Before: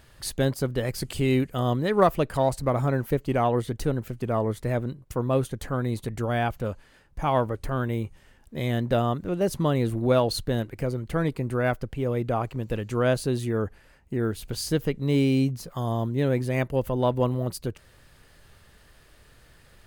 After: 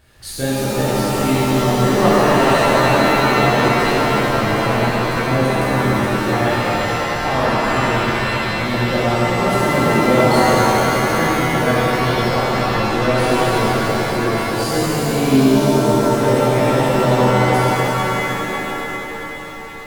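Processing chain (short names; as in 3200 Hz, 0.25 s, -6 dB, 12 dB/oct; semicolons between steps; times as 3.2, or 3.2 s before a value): shimmer reverb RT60 3.9 s, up +7 st, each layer -2 dB, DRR -10.5 dB; gain -3 dB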